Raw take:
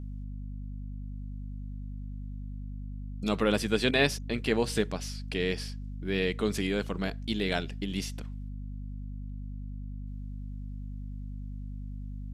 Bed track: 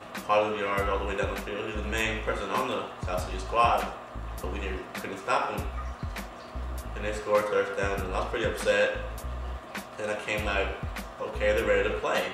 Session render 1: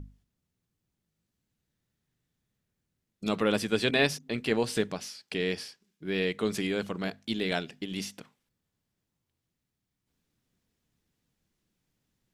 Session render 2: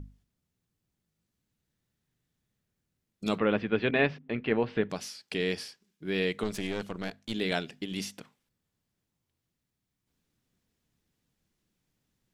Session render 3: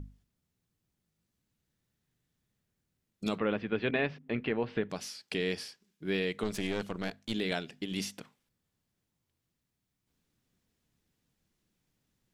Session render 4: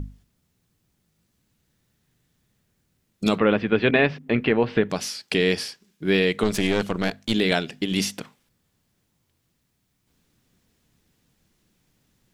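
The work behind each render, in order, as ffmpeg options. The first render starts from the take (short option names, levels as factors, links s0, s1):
-af "bandreject=f=50:t=h:w=6,bandreject=f=100:t=h:w=6,bandreject=f=150:t=h:w=6,bandreject=f=200:t=h:w=6,bandreject=f=250:t=h:w=6"
-filter_complex "[0:a]asettb=1/sr,asplit=3[s0][s1][s2];[s0]atrim=end=3.384[s3];[s1]atrim=start=3.38:end=4.9,asetpts=PTS-STARTPTS,afade=t=in:d=0.004:c=qsin,afade=t=out:st=1.516:d=0.004:c=qsin,lowpass=f=2700:w=0.5412,lowpass=f=2700:w=1.3066[s4];[s2]atrim=start=4.896[s5];[s3][s4]acrossfade=d=0.004:c1=hsin:c2=qsin[s6];[s6][s5]acrossfade=d=0.004:c1=qsin:c2=hsin,asettb=1/sr,asplit=3[s7][s8][s9];[s7]atrim=end=6.434[s10];[s8]atrim=start=6.43:end=7.34,asetpts=PTS-STARTPTS,afade=t=in:d=0.004:c=qsin,afade=t=out:st=0.906:d=0.004:c=qsin,aeval=exprs='(tanh(20*val(0)+0.7)-tanh(0.7))/20':c=same[s11];[s9]atrim=start=7.336[s12];[s10][s11]acrossfade=d=0.004:c1=hsin:c2=qsin[s13];[s13][s12]acrossfade=d=0.004:c1=qsin:c2=hsin"
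-af "alimiter=limit=0.119:level=0:latency=1:release=361"
-af "volume=3.76"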